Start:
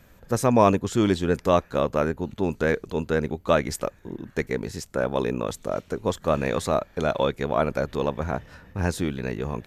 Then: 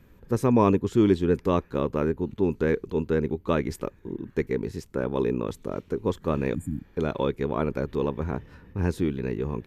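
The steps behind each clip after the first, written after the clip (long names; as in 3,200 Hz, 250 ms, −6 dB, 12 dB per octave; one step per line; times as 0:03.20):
healed spectral selection 0:06.57–0:06.88, 310–6,900 Hz after
drawn EQ curve 200 Hz 0 dB, 410 Hz +3 dB, 650 Hz −11 dB, 970 Hz −3 dB, 1,400 Hz −7 dB, 2,400 Hz −5 dB, 7,400 Hz −12 dB, 12,000 Hz −8 dB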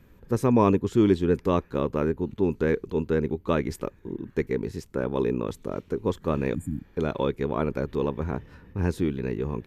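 no processing that can be heard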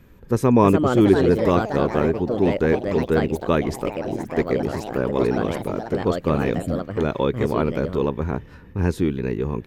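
delay with pitch and tempo change per echo 388 ms, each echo +4 semitones, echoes 3, each echo −6 dB
level +4.5 dB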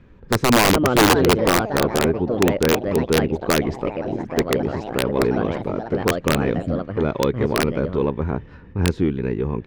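phase distortion by the signal itself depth 0.081 ms
high-frequency loss of the air 160 metres
wrap-around overflow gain 9.5 dB
level +1.5 dB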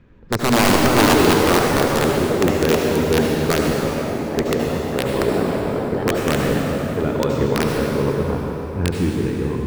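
convolution reverb RT60 3.3 s, pre-delay 63 ms, DRR −0.5 dB
level −2 dB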